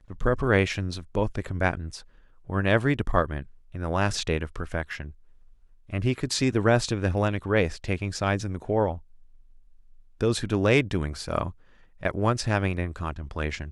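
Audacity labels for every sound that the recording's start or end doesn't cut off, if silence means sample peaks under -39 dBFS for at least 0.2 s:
2.490000	3.440000	sound
3.740000	5.110000	sound
5.890000	8.990000	sound
10.210000	11.510000	sound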